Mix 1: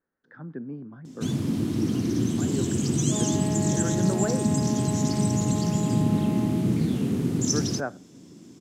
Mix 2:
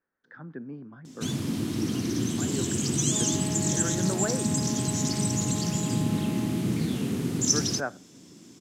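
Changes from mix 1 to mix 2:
second sound −4.5 dB
master: add tilt shelving filter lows −4 dB, about 870 Hz

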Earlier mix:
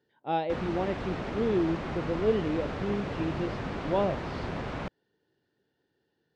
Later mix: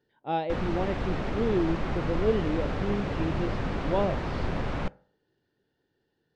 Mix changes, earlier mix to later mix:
background: send on
master: remove high-pass filter 97 Hz 6 dB per octave

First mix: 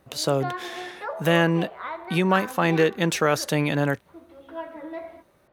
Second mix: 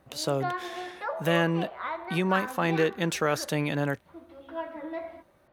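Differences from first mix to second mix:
speech −5.0 dB
background: add parametric band 430 Hz −7.5 dB 0.23 octaves

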